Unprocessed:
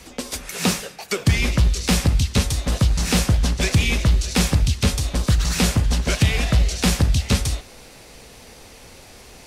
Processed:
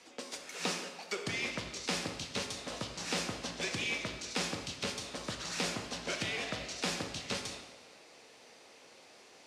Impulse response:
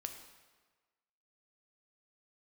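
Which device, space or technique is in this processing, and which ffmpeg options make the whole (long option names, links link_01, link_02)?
supermarket ceiling speaker: -filter_complex "[0:a]highpass=310,lowpass=6900[link_01];[1:a]atrim=start_sample=2205[link_02];[link_01][link_02]afir=irnorm=-1:irlink=0,volume=-8.5dB"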